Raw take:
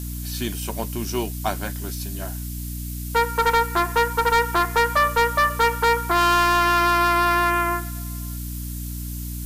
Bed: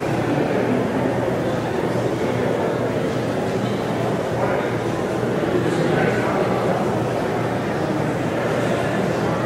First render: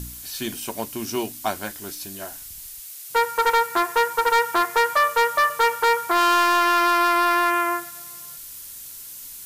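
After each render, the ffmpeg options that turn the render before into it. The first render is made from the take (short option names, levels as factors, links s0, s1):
-af "bandreject=f=60:t=h:w=4,bandreject=f=120:t=h:w=4,bandreject=f=180:t=h:w=4,bandreject=f=240:t=h:w=4,bandreject=f=300:t=h:w=4"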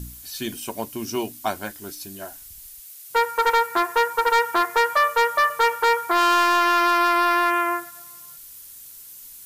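-af "afftdn=nr=6:nf=-39"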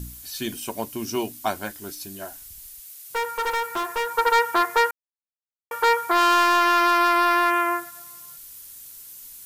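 -filter_complex "[0:a]asettb=1/sr,asplit=3[s0][s1][s2];[s0]atrim=end=2.654[s3];[s1]atrim=start=2.65:end=4.11,asetpts=PTS-STARTPTS,afade=t=in:d=0.004:c=qsin,afade=t=out:st=1.456:d=0.004:c=qsin,aeval=exprs='(tanh(11.2*val(0)+0.05)-tanh(0.05))/11.2':c=same[s4];[s2]atrim=start=4.106[s5];[s3][s4]acrossfade=d=0.004:c1=hsin:c2=qsin[s6];[s6][s5]acrossfade=d=0.004:c1=qsin:c2=hsin,asplit=3[s7][s8][s9];[s7]atrim=end=4.91,asetpts=PTS-STARTPTS,afade=t=out:st=4.906:d=0.004:c=hsin[s10];[s8]atrim=start=4.91:end=5.71,asetpts=PTS-STARTPTS,volume=0[s11];[s9]atrim=start=5.71,asetpts=PTS-STARTPTS,afade=t=in:d=0.004:c=hsin[s12];[s10][s11][s12]concat=n=3:v=0:a=1"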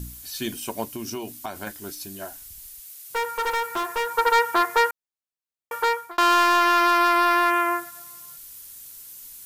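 -filter_complex "[0:a]asettb=1/sr,asplit=3[s0][s1][s2];[s0]atrim=end=0.944[s3];[s1]atrim=start=0.94:end=1.67,asetpts=PTS-STARTPTS,afade=t=in:d=0.004:c=qsin,afade=t=out:st=0.726:d=0.004:c=qsin,acompressor=threshold=0.0398:ratio=6:attack=3.2:release=140:knee=1:detection=peak[s4];[s2]atrim=start=1.666[s5];[s3][s4]acrossfade=d=0.004:c1=hsin:c2=qsin[s6];[s6][s5]acrossfade=d=0.004:c1=qsin:c2=hsin,asplit=2[s7][s8];[s7]atrim=end=6.18,asetpts=PTS-STARTPTS,afade=t=out:st=5.74:d=0.44[s9];[s8]atrim=start=6.18,asetpts=PTS-STARTPTS,afade=t=in:d=0.004:c=hsin[s10];[s9][s10]concat=n=2:v=0:a=1"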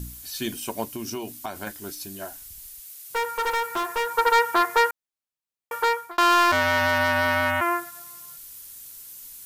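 -filter_complex "[0:a]asplit=3[s0][s1][s2];[s0]afade=t=out:st=6.51:d=0.02[s3];[s1]aeval=exprs='val(0)*sin(2*PI*440*n/s)':c=same,afade=t=in:st=6.51:d=0.02,afade=t=out:st=7.6:d=0.02[s4];[s2]afade=t=in:st=7.6:d=0.02[s5];[s3][s4][s5]amix=inputs=3:normalize=0"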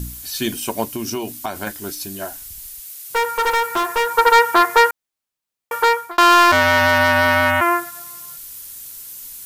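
-af "volume=2.24"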